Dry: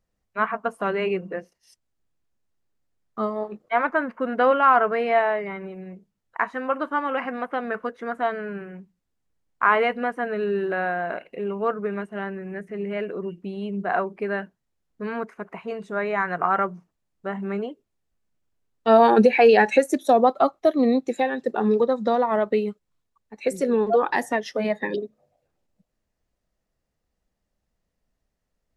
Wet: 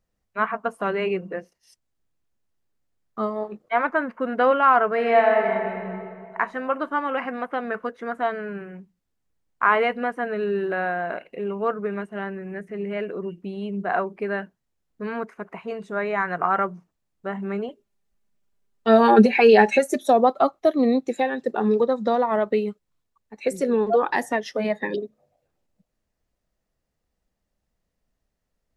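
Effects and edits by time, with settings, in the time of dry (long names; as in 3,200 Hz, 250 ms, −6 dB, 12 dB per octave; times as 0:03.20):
0:04.92–0:05.88: thrown reverb, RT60 2.3 s, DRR 1 dB
0:17.68–0:20.09: comb filter 5 ms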